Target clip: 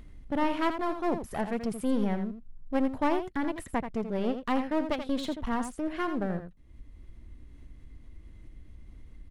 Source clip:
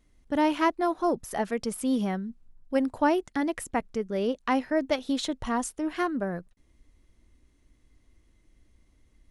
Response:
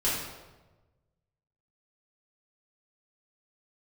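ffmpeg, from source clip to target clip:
-filter_complex "[0:a]acompressor=mode=upward:threshold=-42dB:ratio=2.5,bass=frequency=250:gain=8,treble=frequency=4000:gain=-7,aeval=exprs='clip(val(0),-1,0.0224)':channel_layout=same,equalizer=frequency=6000:width=2.9:gain=-3.5,asplit=2[link_01][link_02];[link_02]aecho=0:1:83:0.355[link_03];[link_01][link_03]amix=inputs=2:normalize=0,volume=-2.5dB"

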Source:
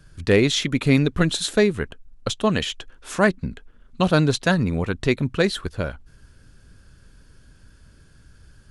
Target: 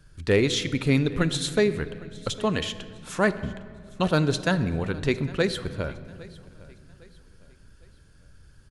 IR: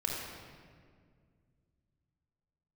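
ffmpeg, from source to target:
-filter_complex "[0:a]asplit=2[link_01][link_02];[link_02]aecho=0:1:807|1614|2421:0.0841|0.032|0.0121[link_03];[link_01][link_03]amix=inputs=2:normalize=0,asoftclip=type=hard:threshold=-4dB,asplit=2[link_04][link_05];[1:a]atrim=start_sample=2205[link_06];[link_05][link_06]afir=irnorm=-1:irlink=0,volume=-15dB[link_07];[link_04][link_07]amix=inputs=2:normalize=0,volume=-5.5dB"

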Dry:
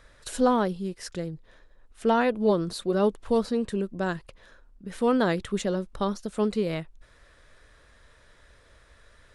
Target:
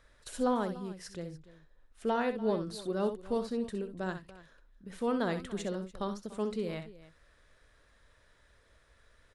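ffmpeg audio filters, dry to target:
ffmpeg -i in.wav -af "aecho=1:1:64|291:0.335|0.133,volume=-8.5dB" out.wav

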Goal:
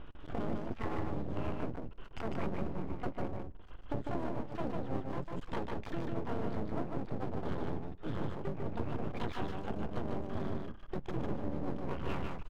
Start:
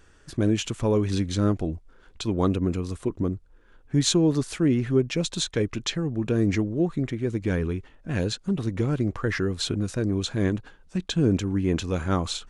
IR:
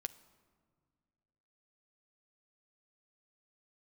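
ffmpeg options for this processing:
-filter_complex "[0:a]lowpass=frequency=1500:width=0.5412,lowpass=frequency=1500:width=1.3066,asplit=4[link_01][link_02][link_03][link_04];[link_02]asetrate=33038,aresample=44100,atempo=1.33484,volume=-1dB[link_05];[link_03]asetrate=35002,aresample=44100,atempo=1.25992,volume=-5dB[link_06];[link_04]asetrate=88200,aresample=44100,atempo=0.5,volume=-2dB[link_07];[link_01][link_05][link_06][link_07]amix=inputs=4:normalize=0,aeval=exprs='max(val(0),0)':channel_layout=same,acompressor=threshold=-36dB:ratio=6,aecho=1:1:150:0.668,asplit=2[link_08][link_09];[1:a]atrim=start_sample=2205[link_10];[link_09][link_10]afir=irnorm=-1:irlink=0,volume=-5dB[link_11];[link_08][link_11]amix=inputs=2:normalize=0,volume=-1.5dB"

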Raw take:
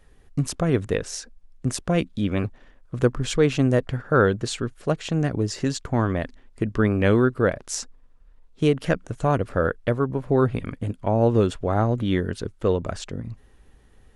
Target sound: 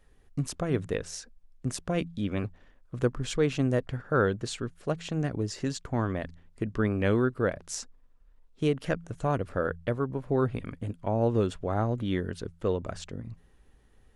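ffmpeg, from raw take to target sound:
ffmpeg -i in.wav -af "bandreject=frequency=83.97:width_type=h:width=4,bandreject=frequency=167.94:width_type=h:width=4,volume=-6.5dB" out.wav

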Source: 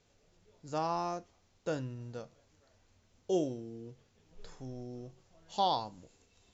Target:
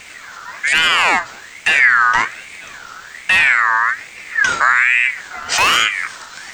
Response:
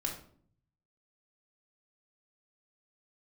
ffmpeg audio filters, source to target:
-filter_complex "[0:a]aexciter=amount=1.1:drive=5:freq=4300,asoftclip=type=tanh:threshold=-36.5dB,acrossover=split=150[link_01][link_02];[link_02]acompressor=threshold=-45dB:ratio=2[link_03];[link_01][link_03]amix=inputs=2:normalize=0,alimiter=level_in=35.5dB:limit=-1dB:release=50:level=0:latency=1,aeval=exprs='val(0)*sin(2*PI*1800*n/s+1800*0.25/1.2*sin(2*PI*1.2*n/s))':channel_layout=same"

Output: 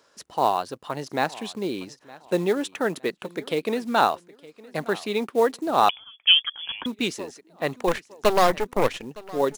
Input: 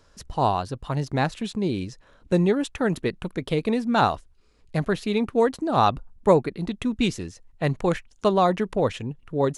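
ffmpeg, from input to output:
ffmpeg -i in.wav -filter_complex "[0:a]highpass=320,acrusher=bits=6:mode=log:mix=0:aa=0.000001,asplit=3[link_01][link_02][link_03];[link_01]afade=type=out:start_time=7.87:duration=0.02[link_04];[link_02]aeval=exprs='0.376*(cos(1*acos(clip(val(0)/0.376,-1,1)))-cos(1*PI/2))+0.0596*(cos(8*acos(clip(val(0)/0.376,-1,1)))-cos(8*PI/2))':channel_layout=same,afade=type=in:start_time=7.87:duration=0.02,afade=type=out:start_time=9.04:duration=0.02[link_05];[link_03]afade=type=in:start_time=9.04:duration=0.02[link_06];[link_04][link_05][link_06]amix=inputs=3:normalize=0,aecho=1:1:913|1826:0.0891|0.0276,asettb=1/sr,asplit=3[link_07][link_08][link_09];[link_07]atrim=end=5.894[link_10];[link_08]atrim=start=5.89:end=6.86,asetpts=PTS-STARTPTS,afade=type=in:duration=0.004:curve=qsin,afade=type=out:start_time=0.966:duration=0.004:curve=qsin,lowpass=frequency=3100:width_type=q:width=0.5098,lowpass=frequency=3100:width_type=q:width=0.6013,lowpass=frequency=3100:width_type=q:width=0.9,lowpass=frequency=3100:width_type=q:width=2.563,afreqshift=-3600[link_11];[link_09]atrim=start=6.856[link_12];[link_10][link_11]acrossfade=duration=0.004:curve1=hsin:curve2=qsin[link_13];[link_13][link_12]acrossfade=duration=0.004:curve1=qsin:curve2=hsin,volume=1dB" out.wav

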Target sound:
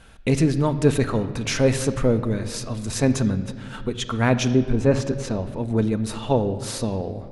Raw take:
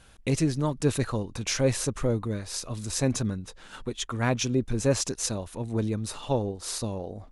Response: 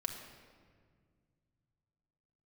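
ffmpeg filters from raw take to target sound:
-filter_complex "[0:a]asettb=1/sr,asplit=3[link_01][link_02][link_03];[link_01]atrim=end=4.544[link_04];[link_02]atrim=start=4.54:end=5.58,asetpts=PTS-STARTPTS,afade=type=in:duration=0.004:curve=qsin,afade=type=out:start_time=1.036:duration=0.004:curve=qsin,lowpass=frequency=2100:poles=1[link_05];[link_03]atrim=start=5.576[link_06];[link_04][link_05]acrossfade=duration=0.004:curve1=hsin:curve2=qsin[link_07];[link_07][link_06]acrossfade=duration=0.004:curve1=qsin:curve2=hsin,asplit=2[link_08][link_09];[link_09]equalizer=frequency=1100:width=6.6:gain=-5.5[link_10];[1:a]atrim=start_sample=2205,lowpass=4000[link_11];[link_10][link_11]afir=irnorm=-1:irlink=0,volume=-1.5dB[link_12];[link_08][link_12]amix=inputs=2:normalize=0,volume=1.5dB"

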